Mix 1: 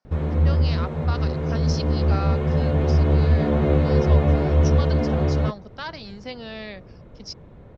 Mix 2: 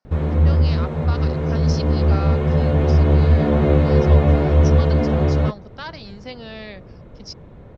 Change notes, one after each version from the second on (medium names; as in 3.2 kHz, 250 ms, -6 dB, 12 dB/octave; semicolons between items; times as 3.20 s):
background +3.5 dB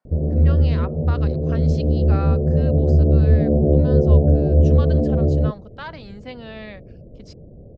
speech: remove resonant low-pass 5.5 kHz, resonance Q 6.5; background: add steep low-pass 660 Hz 48 dB/octave